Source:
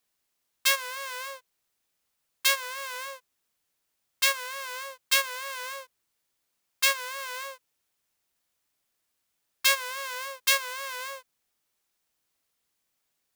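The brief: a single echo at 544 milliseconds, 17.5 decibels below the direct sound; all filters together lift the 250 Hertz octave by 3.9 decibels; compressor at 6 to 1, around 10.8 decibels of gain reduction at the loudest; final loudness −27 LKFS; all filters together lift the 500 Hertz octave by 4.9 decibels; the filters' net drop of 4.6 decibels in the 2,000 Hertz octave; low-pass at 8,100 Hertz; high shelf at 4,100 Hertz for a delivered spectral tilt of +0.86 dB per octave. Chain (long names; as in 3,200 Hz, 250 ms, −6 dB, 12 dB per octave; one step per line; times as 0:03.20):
low-pass filter 8,100 Hz
parametric band 250 Hz +3 dB
parametric band 500 Hz +5 dB
parametric band 2,000 Hz −5 dB
high-shelf EQ 4,100 Hz −5.5 dB
downward compressor 6 to 1, threshold −32 dBFS
single-tap delay 544 ms −17.5 dB
level +11.5 dB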